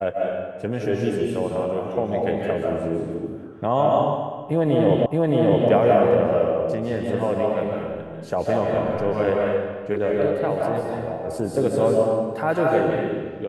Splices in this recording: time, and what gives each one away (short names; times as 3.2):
5.06 repeat of the last 0.62 s